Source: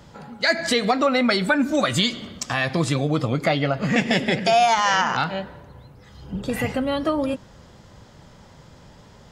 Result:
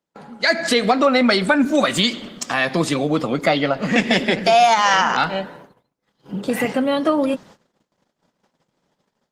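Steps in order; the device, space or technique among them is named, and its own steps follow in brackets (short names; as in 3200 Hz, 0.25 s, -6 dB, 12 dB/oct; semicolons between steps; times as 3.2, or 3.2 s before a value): 3.45–4.32 dynamic EQ 3900 Hz, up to +3 dB, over -36 dBFS, Q 1.2; video call (HPF 180 Hz 24 dB/oct; AGC gain up to 3.5 dB; gate -43 dBFS, range -34 dB; gain +1.5 dB; Opus 20 kbps 48000 Hz)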